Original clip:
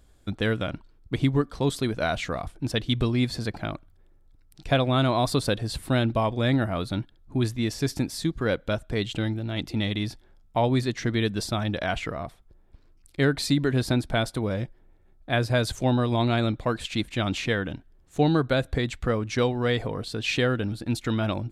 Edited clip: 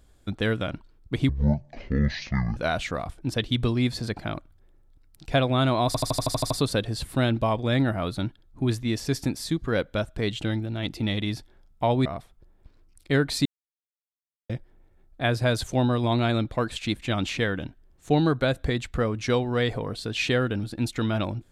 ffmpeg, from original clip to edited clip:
-filter_complex "[0:a]asplit=14[a][b][c][d][e][f][g][h][i][j][k][l][m][n];[a]atrim=end=1.294[o];[b]atrim=start=1.29:end=1.94,asetpts=PTS-STARTPTS,asetrate=22491,aresample=44100[p];[c]atrim=start=1.936:end=5.322[q];[d]atrim=start=5.238:end=5.322[r];[e]atrim=start=5.238:end=5.322[s];[f]atrim=start=5.238:end=5.322[t];[g]atrim=start=5.238:end=5.322[u];[h]atrim=start=5.238:end=5.322[v];[i]atrim=start=5.238:end=5.322[w];[j]atrim=start=5.238:end=5.322[x];[k]atrim=start=5.238:end=10.792[y];[l]atrim=start=12.138:end=13.54,asetpts=PTS-STARTPTS,afade=t=out:st=1.398:d=0.004:c=hsin[z];[m]atrim=start=13.54:end=14.58,asetpts=PTS-STARTPTS,volume=0[aa];[n]atrim=start=14.58,asetpts=PTS-STARTPTS,afade=t=in:d=0.004:c=hsin[ab];[o][p]acrossfade=d=0.004:c1=hsin:c2=hsin[ac];[ac][q]acrossfade=d=0.004:c1=hsin:c2=hsin[ad];[ad][r]acrossfade=d=0.004:c1=hsin:c2=hsin[ae];[ae][s]acrossfade=d=0.004:c1=hsin:c2=hsin[af];[af][t]acrossfade=d=0.004:c1=hsin:c2=hsin[ag];[ag][u]acrossfade=d=0.004:c1=hsin:c2=hsin[ah];[ah][v]acrossfade=d=0.004:c1=hsin:c2=hsin[ai];[ai][w]acrossfade=d=0.004:c1=hsin:c2=hsin[aj];[aj][x]acrossfade=d=0.004:c1=hsin:c2=hsin[ak];[ak][y]acrossfade=d=0.004:c1=hsin:c2=hsin[al];[z][aa][ab]concat=n=3:v=0:a=1[am];[al][am]acrossfade=d=0.004:c1=hsin:c2=hsin"

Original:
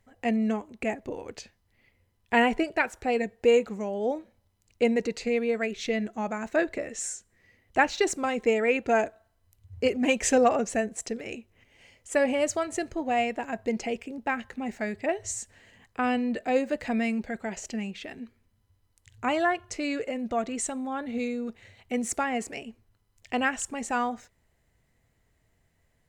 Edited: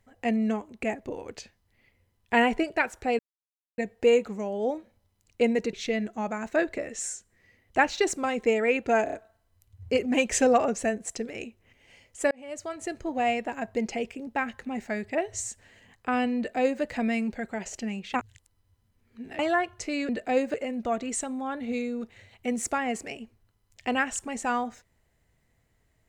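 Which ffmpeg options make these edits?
-filter_complex "[0:a]asplit=11[a][b][c][d][e][f][g][h][i][j][k];[a]atrim=end=3.19,asetpts=PTS-STARTPTS,afade=t=out:st=3.186:d=0.004:c=hsin,apad=pad_dur=0.59[l];[b]atrim=start=3.19:end=5.142,asetpts=PTS-STARTPTS,afade=t=in:d=0.004:c=hsin[m];[c]atrim=start=5.728:end=9.072[n];[d]atrim=start=9.038:end=9.072[o];[e]atrim=start=9.038:end=9.072[p];[f]atrim=start=9.038:end=12.22,asetpts=PTS-STARTPTS,afade=t=out:st=3.178:d=0.004:c=hsin[q];[g]atrim=start=12.22:end=18.052,asetpts=PTS-STARTPTS,afade=t=in:d=0.83[r];[h]atrim=start=18.048:end=19.302,asetpts=PTS-STARTPTS,areverse[s];[i]atrim=start=19.298:end=20.002[t];[j]atrim=start=16.278:end=16.732[u];[k]atrim=start=19.998[v];[l][m]concat=n=2:v=0:a=1[w];[w][n]acrossfade=d=0.004:c1=hsin:c2=hsin[x];[x][o]acrossfade=d=0.004:c1=hsin:c2=hsin[y];[y][p]acrossfade=d=0.004:c1=hsin:c2=hsin[z];[q][r]concat=n=2:v=0:a=1[aa];[z][aa]acrossfade=d=0.004:c1=hsin:c2=hsin[ab];[ab][s]acrossfade=d=0.004:c1=hsin:c2=hsin[ac];[ac][t]acrossfade=d=0.004:c1=hsin:c2=hsin[ad];[ad][u]acrossfade=d=0.004:c1=hsin:c2=hsin[ae];[ae][v]acrossfade=d=0.004:c1=hsin:c2=hsin"

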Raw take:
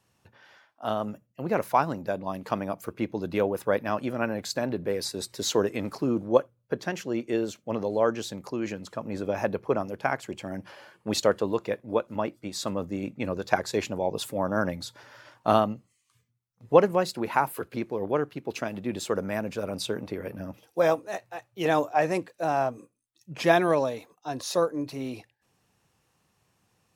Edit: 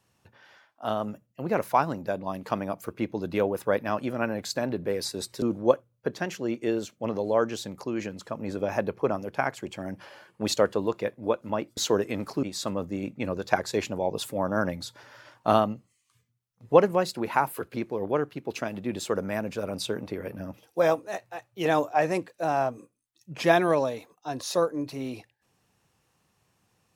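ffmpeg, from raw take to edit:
-filter_complex "[0:a]asplit=4[a][b][c][d];[a]atrim=end=5.422[e];[b]atrim=start=6.078:end=12.432[f];[c]atrim=start=5.418:end=6.082[g];[d]atrim=start=12.428[h];[e][f]acrossfade=d=0.004:c1=hsin:c2=hsin[i];[i][g]acrossfade=d=0.004:c1=hsin:c2=hsin[j];[j][h]acrossfade=d=0.004:c1=hsin:c2=hsin"

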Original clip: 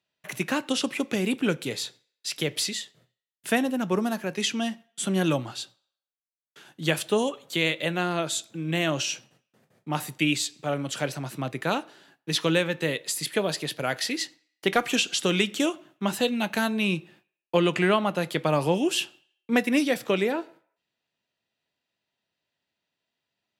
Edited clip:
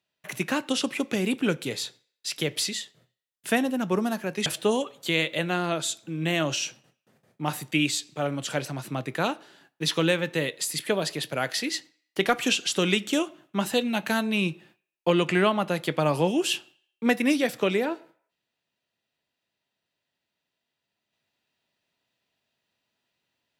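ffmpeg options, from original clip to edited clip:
-filter_complex "[0:a]asplit=2[a][b];[a]atrim=end=4.462[c];[b]atrim=start=6.928[d];[c][d]acrossfade=d=0.004:c1=hsin:c2=hsin"

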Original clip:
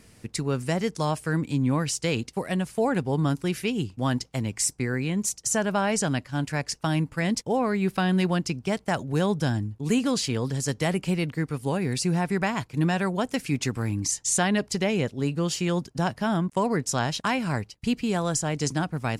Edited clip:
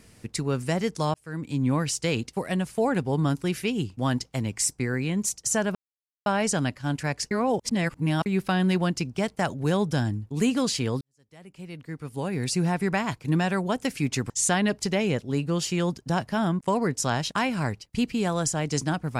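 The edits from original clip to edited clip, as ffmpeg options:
-filter_complex "[0:a]asplit=7[a][b][c][d][e][f][g];[a]atrim=end=1.14,asetpts=PTS-STARTPTS,afade=t=out:st=1.136:d=0.004:c=hsin[h];[b]atrim=start=1.14:end=5.75,asetpts=PTS-STARTPTS,afade=t=in:d=0.53,afade=t=out:st=4.606:d=0.004:c=hsin,apad=pad_dur=0.51[i];[c]atrim=start=5.75:end=6.802,asetpts=PTS-STARTPTS,afade=t=in:d=0.004:c=hsin[j];[d]atrim=start=6.798:end=7.752,asetpts=PTS-STARTPTS,areverse[k];[e]atrim=start=7.748:end=10.5,asetpts=PTS-STARTPTS,afade=t=out:st=2.748:d=0.004:c=hsin[l];[f]atrim=start=10.5:end=13.792,asetpts=PTS-STARTPTS,afade=t=in:d=1.5:c=qua[m];[g]atrim=start=14.188[n];[h][i][j]concat=n=3:v=0:a=1[o];[o][k]acrossfade=d=0.004:c1=hsin:c2=hsin[p];[l][m]concat=n=2:v=0:a=1[q];[p][q]acrossfade=d=0.004:c1=hsin:c2=hsin[r];[r][n]acrossfade=d=0.004:c1=hsin:c2=hsin"

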